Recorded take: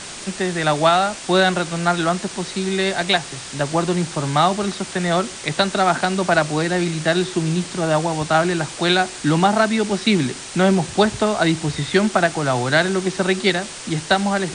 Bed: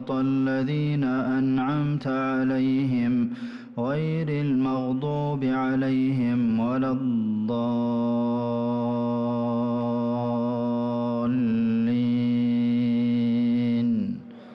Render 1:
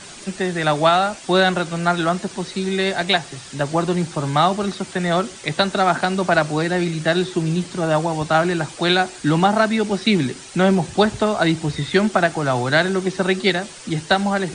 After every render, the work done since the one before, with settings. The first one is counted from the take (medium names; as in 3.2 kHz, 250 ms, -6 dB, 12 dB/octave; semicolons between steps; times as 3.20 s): noise reduction 8 dB, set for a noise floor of -34 dBFS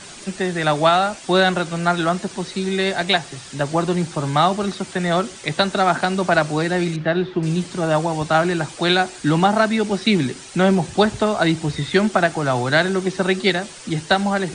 6.96–7.43 s: distance through air 320 m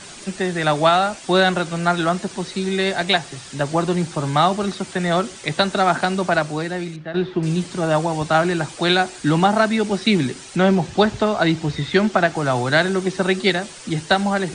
6.07–7.14 s: fade out, to -12 dB; 10.56–12.35 s: low-pass 6.5 kHz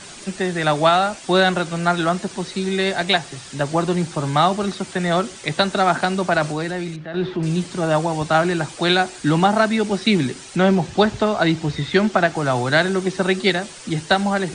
6.36–7.56 s: transient shaper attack -4 dB, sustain +4 dB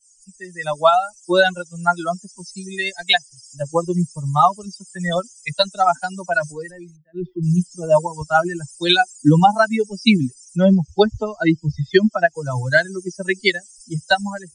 expander on every frequency bin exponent 3; level rider gain up to 11 dB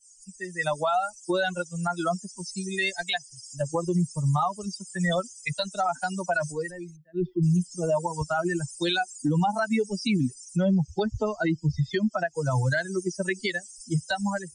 compression, threshold -16 dBFS, peak gain reduction 9 dB; peak limiter -17 dBFS, peak gain reduction 11.5 dB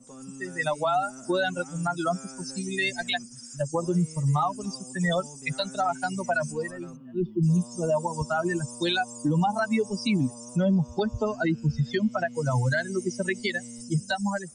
add bed -20 dB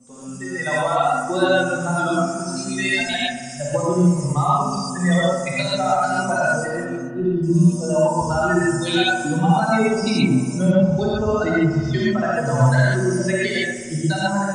on a send: feedback echo behind a low-pass 61 ms, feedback 79%, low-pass 1.7 kHz, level -8.5 dB; on the sum: gated-style reverb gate 160 ms rising, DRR -6.5 dB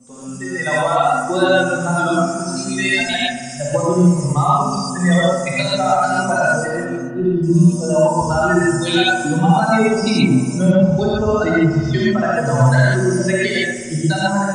trim +3.5 dB; peak limiter -3 dBFS, peak gain reduction 2 dB